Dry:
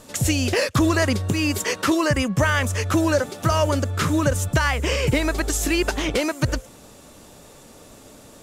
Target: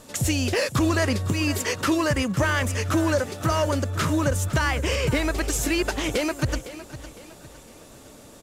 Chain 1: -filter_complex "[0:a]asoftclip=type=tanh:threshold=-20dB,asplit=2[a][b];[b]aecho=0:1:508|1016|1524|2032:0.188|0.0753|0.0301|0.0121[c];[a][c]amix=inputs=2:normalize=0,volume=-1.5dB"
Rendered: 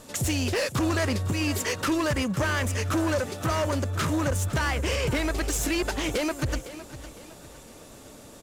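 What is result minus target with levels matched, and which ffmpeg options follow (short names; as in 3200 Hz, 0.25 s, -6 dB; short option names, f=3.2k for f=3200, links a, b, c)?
soft clip: distortion +9 dB
-filter_complex "[0:a]asoftclip=type=tanh:threshold=-12dB,asplit=2[a][b];[b]aecho=0:1:508|1016|1524|2032:0.188|0.0753|0.0301|0.0121[c];[a][c]amix=inputs=2:normalize=0,volume=-1.5dB"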